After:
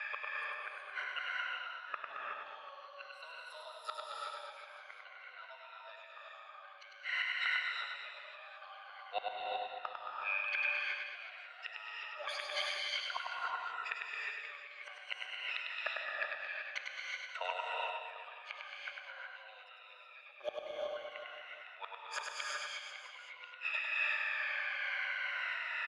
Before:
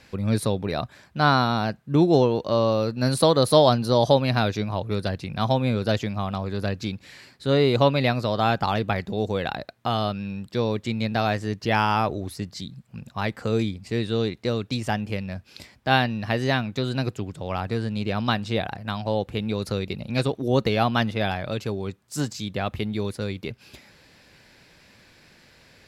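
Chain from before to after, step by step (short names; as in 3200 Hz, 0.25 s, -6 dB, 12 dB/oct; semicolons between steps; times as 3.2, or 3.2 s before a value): moving spectral ripple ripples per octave 2, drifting -0.5 Hz, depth 18 dB; Chebyshev high-pass 590 Hz, order 5; low-pass opened by the level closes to 2400 Hz, open at -15.5 dBFS; band shelf 1900 Hz +13.5 dB; compressor 3:1, threshold -23 dBFS, peak gain reduction 16 dB; tremolo 2.2 Hz, depth 50%; flipped gate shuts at -26 dBFS, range -32 dB; on a send: reverse bouncing-ball echo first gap 0.1 s, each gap 1.2×, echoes 5; on the sum: non-linear reverb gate 0.4 s rising, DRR -2.5 dB; gain +1 dB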